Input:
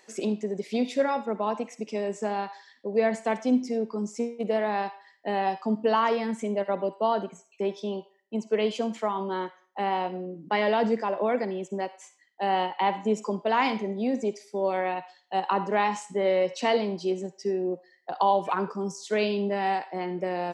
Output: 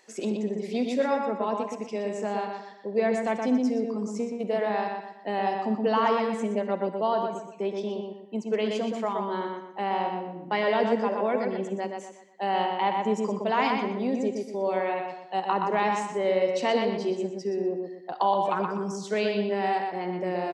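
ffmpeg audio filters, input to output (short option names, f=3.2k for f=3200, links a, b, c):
-filter_complex "[0:a]asplit=2[a][b];[b]adelay=122,lowpass=f=3.4k:p=1,volume=-3.5dB,asplit=2[c][d];[d]adelay=122,lowpass=f=3.4k:p=1,volume=0.39,asplit=2[e][f];[f]adelay=122,lowpass=f=3.4k:p=1,volume=0.39,asplit=2[g][h];[h]adelay=122,lowpass=f=3.4k:p=1,volume=0.39,asplit=2[i][j];[j]adelay=122,lowpass=f=3.4k:p=1,volume=0.39[k];[a][c][e][g][i][k]amix=inputs=6:normalize=0,volume=-1.5dB"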